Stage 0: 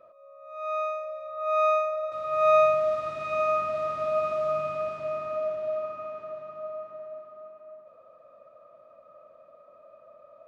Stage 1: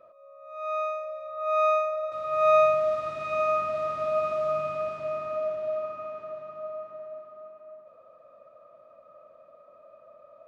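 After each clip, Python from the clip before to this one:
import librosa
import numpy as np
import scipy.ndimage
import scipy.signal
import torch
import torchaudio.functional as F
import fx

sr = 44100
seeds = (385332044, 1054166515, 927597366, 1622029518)

y = x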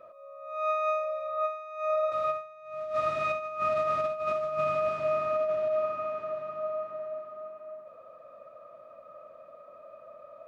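y = fx.peak_eq(x, sr, hz=1900.0, db=2.5, octaves=1.3)
y = fx.over_compress(y, sr, threshold_db=-29.0, ratio=-0.5)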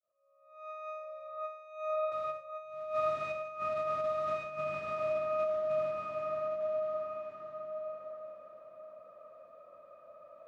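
y = fx.fade_in_head(x, sr, length_s=2.02)
y = fx.echo_feedback(y, sr, ms=1114, feedback_pct=17, wet_db=-3)
y = y * 10.0 ** (-7.0 / 20.0)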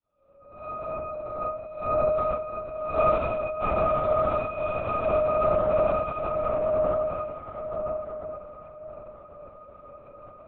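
y = fx.octave_divider(x, sr, octaves=2, level_db=0.0)
y = fx.rev_fdn(y, sr, rt60_s=0.64, lf_ratio=1.0, hf_ratio=0.7, size_ms=12.0, drr_db=-6.0)
y = fx.lpc_vocoder(y, sr, seeds[0], excitation='whisper', order=8)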